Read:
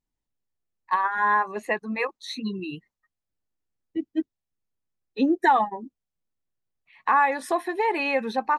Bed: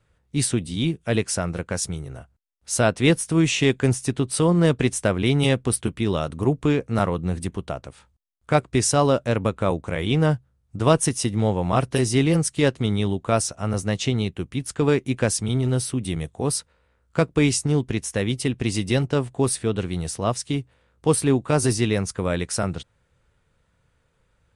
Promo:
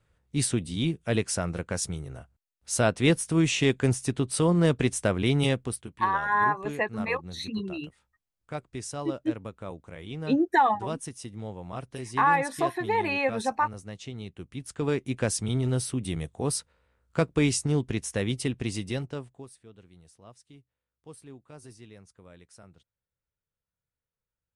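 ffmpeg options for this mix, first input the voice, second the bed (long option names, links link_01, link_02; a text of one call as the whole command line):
ffmpeg -i stem1.wav -i stem2.wav -filter_complex "[0:a]adelay=5100,volume=-2dB[link_01];[1:a]volume=8dB,afade=type=out:start_time=5.41:duration=0.46:silence=0.237137,afade=type=in:start_time=14.13:duration=1.31:silence=0.251189,afade=type=out:start_time=18.38:duration=1.1:silence=0.0707946[link_02];[link_01][link_02]amix=inputs=2:normalize=0" out.wav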